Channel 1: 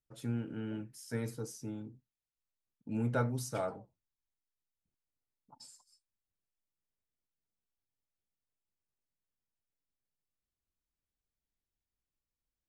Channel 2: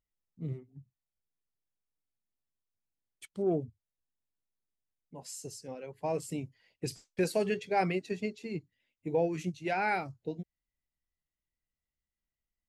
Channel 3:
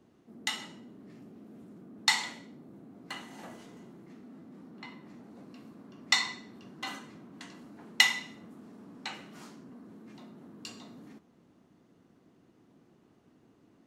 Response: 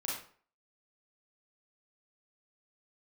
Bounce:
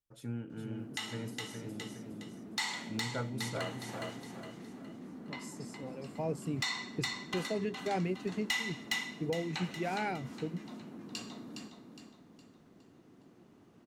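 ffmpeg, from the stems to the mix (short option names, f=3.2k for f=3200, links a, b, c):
-filter_complex "[0:a]volume=-3.5dB,asplit=3[a][b][c];[b]volume=-6dB[d];[1:a]lowshelf=f=400:g=10.5,adelay=150,volume=-7dB[e];[2:a]asoftclip=type=tanh:threshold=-15.5dB,adelay=500,volume=2dB,asplit=2[f][g];[g]volume=-7dB[h];[c]apad=whole_len=565953[i];[e][i]sidechaincompress=threshold=-57dB:ratio=8:attack=16:release=390[j];[d][h]amix=inputs=2:normalize=0,aecho=0:1:413|826|1239|1652|2065:1|0.39|0.152|0.0593|0.0231[k];[a][j][f][k]amix=inputs=4:normalize=0,alimiter=level_in=0.5dB:limit=-24dB:level=0:latency=1:release=310,volume=-0.5dB"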